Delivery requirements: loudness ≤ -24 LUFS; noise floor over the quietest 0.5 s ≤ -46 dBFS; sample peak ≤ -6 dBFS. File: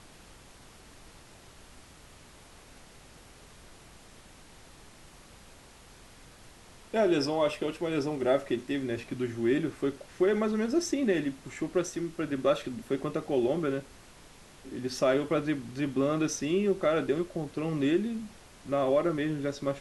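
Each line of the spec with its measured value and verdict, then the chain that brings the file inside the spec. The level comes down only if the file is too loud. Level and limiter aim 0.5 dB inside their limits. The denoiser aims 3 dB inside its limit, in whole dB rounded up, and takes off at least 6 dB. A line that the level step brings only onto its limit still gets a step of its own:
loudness -30.0 LUFS: OK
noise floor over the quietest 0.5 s -53 dBFS: OK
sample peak -14.0 dBFS: OK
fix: none

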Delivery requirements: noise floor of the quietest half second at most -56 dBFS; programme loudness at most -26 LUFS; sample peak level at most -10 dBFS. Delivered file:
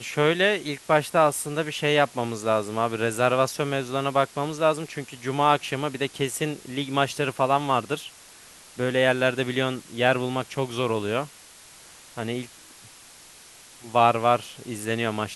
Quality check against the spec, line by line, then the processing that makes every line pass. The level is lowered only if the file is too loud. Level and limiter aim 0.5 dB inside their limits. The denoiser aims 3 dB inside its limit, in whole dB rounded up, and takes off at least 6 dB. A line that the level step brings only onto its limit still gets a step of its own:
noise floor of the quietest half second -49 dBFS: fail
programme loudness -24.5 LUFS: fail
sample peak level -4.5 dBFS: fail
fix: denoiser 8 dB, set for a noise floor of -49 dBFS; gain -2 dB; limiter -10.5 dBFS

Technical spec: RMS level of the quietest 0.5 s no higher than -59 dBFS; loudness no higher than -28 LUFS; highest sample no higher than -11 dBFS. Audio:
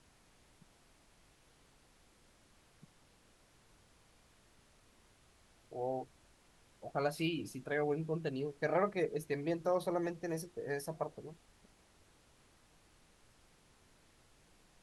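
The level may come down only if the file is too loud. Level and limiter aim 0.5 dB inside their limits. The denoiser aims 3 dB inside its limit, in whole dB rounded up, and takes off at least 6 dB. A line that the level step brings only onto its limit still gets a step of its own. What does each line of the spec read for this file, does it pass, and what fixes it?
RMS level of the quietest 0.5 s -67 dBFS: OK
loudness -37.5 LUFS: OK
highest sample -21.0 dBFS: OK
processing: none

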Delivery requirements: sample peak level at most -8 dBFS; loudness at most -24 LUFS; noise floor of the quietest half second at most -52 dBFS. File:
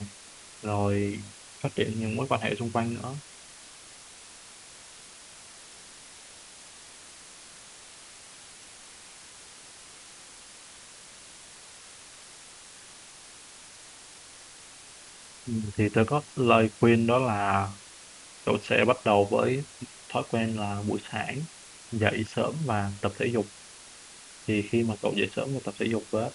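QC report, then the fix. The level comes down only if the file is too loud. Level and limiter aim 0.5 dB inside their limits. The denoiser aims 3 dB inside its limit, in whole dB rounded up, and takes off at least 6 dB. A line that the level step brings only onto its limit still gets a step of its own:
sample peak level -4.0 dBFS: fail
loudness -28.0 LUFS: OK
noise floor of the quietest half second -49 dBFS: fail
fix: denoiser 6 dB, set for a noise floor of -49 dBFS; limiter -8.5 dBFS

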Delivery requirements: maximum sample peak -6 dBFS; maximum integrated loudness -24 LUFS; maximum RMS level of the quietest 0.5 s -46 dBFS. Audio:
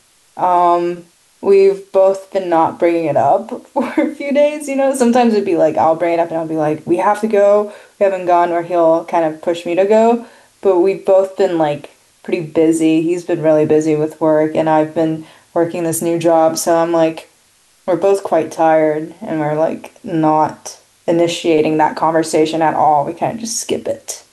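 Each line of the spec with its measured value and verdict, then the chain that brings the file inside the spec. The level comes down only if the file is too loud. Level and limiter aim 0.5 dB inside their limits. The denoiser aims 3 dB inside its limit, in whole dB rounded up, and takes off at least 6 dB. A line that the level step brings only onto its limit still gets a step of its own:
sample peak -3.0 dBFS: fail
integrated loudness -14.5 LUFS: fail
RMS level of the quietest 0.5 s -53 dBFS: OK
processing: gain -10 dB

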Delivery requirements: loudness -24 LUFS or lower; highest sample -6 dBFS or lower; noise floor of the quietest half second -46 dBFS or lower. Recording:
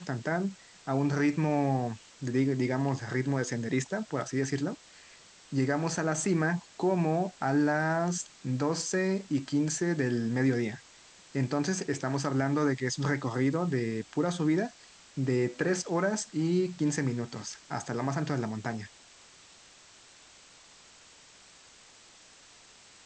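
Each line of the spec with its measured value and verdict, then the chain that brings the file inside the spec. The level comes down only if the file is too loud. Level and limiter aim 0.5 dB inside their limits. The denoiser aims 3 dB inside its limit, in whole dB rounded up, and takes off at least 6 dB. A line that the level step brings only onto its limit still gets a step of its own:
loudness -30.5 LUFS: OK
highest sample -15.5 dBFS: OK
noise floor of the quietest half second -56 dBFS: OK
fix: none

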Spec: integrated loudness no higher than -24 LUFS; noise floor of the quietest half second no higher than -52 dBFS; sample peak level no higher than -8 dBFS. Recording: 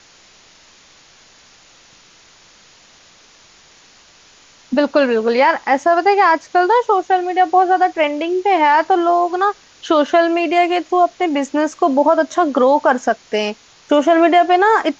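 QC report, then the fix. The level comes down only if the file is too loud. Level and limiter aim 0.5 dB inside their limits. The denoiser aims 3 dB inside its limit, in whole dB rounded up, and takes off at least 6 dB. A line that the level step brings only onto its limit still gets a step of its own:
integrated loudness -15.0 LUFS: fail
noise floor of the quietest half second -48 dBFS: fail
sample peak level -3.5 dBFS: fail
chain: gain -9.5 dB

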